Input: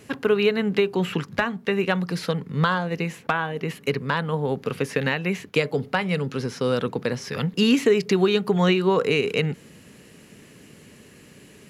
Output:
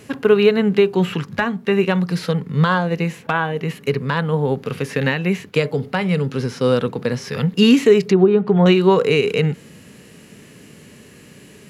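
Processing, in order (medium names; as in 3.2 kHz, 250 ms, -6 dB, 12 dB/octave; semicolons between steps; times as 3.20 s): harmonic-percussive split harmonic +7 dB; 8.06–8.66 s: low-pass that closes with the level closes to 920 Hz, closed at -8.5 dBFS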